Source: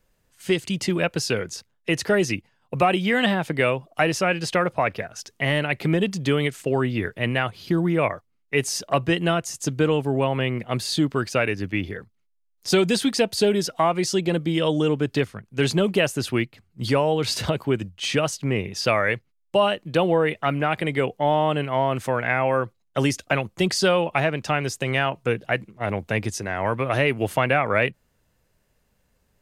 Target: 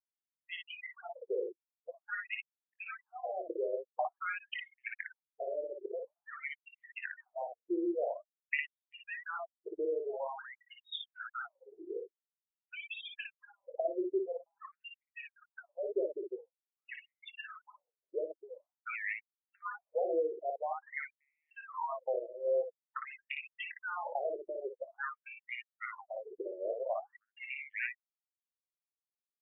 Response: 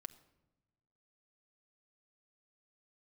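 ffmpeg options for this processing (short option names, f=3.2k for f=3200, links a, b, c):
-filter_complex "[0:a]acompressor=threshold=-32dB:ratio=4,asplit=2[a][b];[1:a]atrim=start_sample=2205,highshelf=f=10k:g=-11[c];[b][c]afir=irnorm=-1:irlink=0,volume=-0.5dB[d];[a][d]amix=inputs=2:normalize=0,afftfilt=real='re*gte(hypot(re,im),0.0447)':imag='im*gte(hypot(re,im),0.0447)':win_size=1024:overlap=0.75,acontrast=44,aecho=1:1:23|57:0.251|0.631,afftfilt=real='re*between(b*sr/1024,440*pow(2700/440,0.5+0.5*sin(2*PI*0.48*pts/sr))/1.41,440*pow(2700/440,0.5+0.5*sin(2*PI*0.48*pts/sr))*1.41)':imag='im*between(b*sr/1024,440*pow(2700/440,0.5+0.5*sin(2*PI*0.48*pts/sr))/1.41,440*pow(2700/440,0.5+0.5*sin(2*PI*0.48*pts/sr))*1.41)':win_size=1024:overlap=0.75,volume=-7.5dB"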